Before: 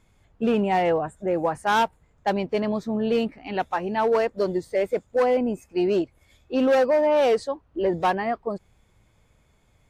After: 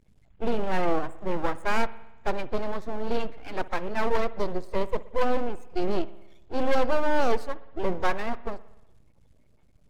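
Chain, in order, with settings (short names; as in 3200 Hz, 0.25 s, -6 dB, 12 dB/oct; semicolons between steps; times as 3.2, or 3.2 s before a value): bin magnitudes rounded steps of 30 dB; high shelf 4700 Hz -6.5 dB; half-wave rectifier; low shelf 77 Hz +7.5 dB; spring tank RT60 1 s, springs 59 ms, chirp 60 ms, DRR 17 dB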